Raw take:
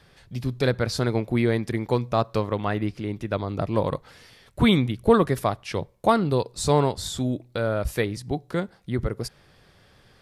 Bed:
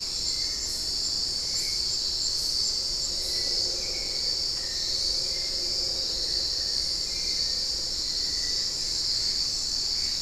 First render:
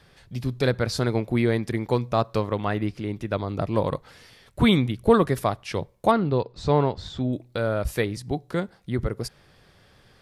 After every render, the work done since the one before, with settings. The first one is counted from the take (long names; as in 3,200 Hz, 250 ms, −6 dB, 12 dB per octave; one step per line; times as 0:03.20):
0:06.11–0:07.33: high-frequency loss of the air 210 metres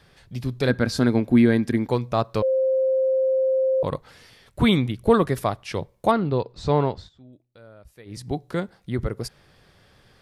0:00.69–0:01.88: hollow resonant body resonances 250/1,600 Hz, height 11 dB
0:02.42–0:03.83: beep over 526 Hz −17.5 dBFS
0:06.95–0:08.20: duck −22.5 dB, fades 0.15 s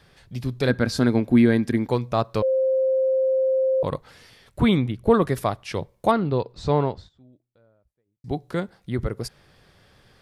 0:04.60–0:05.22: high-shelf EQ 2,800 Hz −7.5 dB
0:06.52–0:08.24: fade out and dull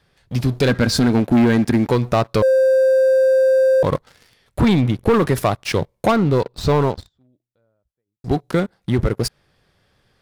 leveller curve on the samples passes 3
downward compressor 2 to 1, threshold −15 dBFS, peak gain reduction 4.5 dB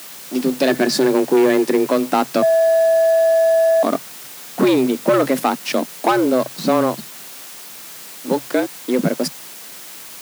bit-depth reduction 6 bits, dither triangular
frequency shifter +130 Hz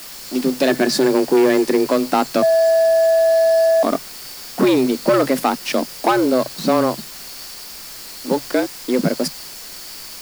mix in bed −11.5 dB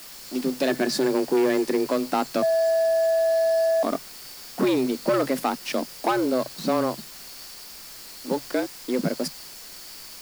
level −7 dB